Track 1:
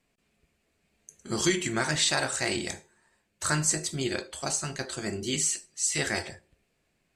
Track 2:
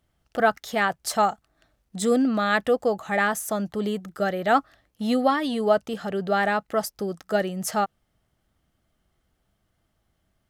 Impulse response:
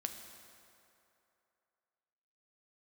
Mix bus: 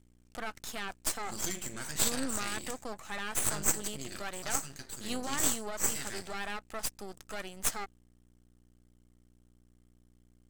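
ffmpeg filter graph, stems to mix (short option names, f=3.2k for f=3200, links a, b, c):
-filter_complex "[0:a]volume=-9dB[a];[1:a]highpass=410,alimiter=limit=-19dB:level=0:latency=1:release=52,aeval=exprs='val(0)+0.00158*(sin(2*PI*60*n/s)+sin(2*PI*2*60*n/s)/2+sin(2*PI*3*60*n/s)/3+sin(2*PI*4*60*n/s)/4+sin(2*PI*5*60*n/s)/5)':c=same,volume=-3.5dB[b];[a][b]amix=inputs=2:normalize=0,equalizer=f=250:t=o:w=1:g=5,equalizer=f=500:t=o:w=1:g=-9,equalizer=f=8k:t=o:w=1:g=11,aeval=exprs='max(val(0),0)':c=same,aeval=exprs='0.282*(cos(1*acos(clip(val(0)/0.282,-1,1)))-cos(1*PI/2))+0.0562*(cos(6*acos(clip(val(0)/0.282,-1,1)))-cos(6*PI/2))+0.0398*(cos(8*acos(clip(val(0)/0.282,-1,1)))-cos(8*PI/2))':c=same"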